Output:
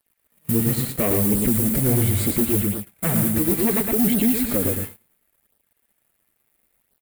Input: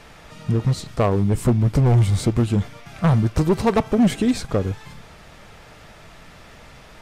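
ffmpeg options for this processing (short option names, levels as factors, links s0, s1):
-filter_complex "[0:a]equalizer=f=125:t=o:w=1:g=-10,equalizer=f=250:t=o:w=1:g=5,equalizer=f=1000:t=o:w=1:g=-8,equalizer=f=2000:t=o:w=1:g=7,equalizer=f=8000:t=o:w=1:g=-6,acrossover=split=6900[s0][s1];[s1]acompressor=threshold=0.00158:ratio=4:attack=1:release=60[s2];[s0][s2]amix=inputs=2:normalize=0,lowshelf=f=300:g=6.5,alimiter=limit=0.224:level=0:latency=1:release=151,highpass=f=98:p=1,acrossover=split=670|1200[s3][s4][s5];[s3]acrusher=bits=6:mix=0:aa=0.000001[s6];[s6][s4][s5]amix=inputs=3:normalize=0,aexciter=amount=12.4:drive=7.4:freq=8300,aeval=exprs='sgn(val(0))*max(abs(val(0))-0.00531,0)':c=same,asplit=2[s7][s8];[s8]aecho=0:1:113|226|339|452:0.596|0.197|0.0649|0.0214[s9];[s7][s9]amix=inputs=2:normalize=0,flanger=delay=0.2:depth=9:regen=-18:speed=0.72:shape=sinusoidal,agate=range=0.0282:threshold=0.0251:ratio=16:detection=peak,asoftclip=type=tanh:threshold=0.126,volume=1.88"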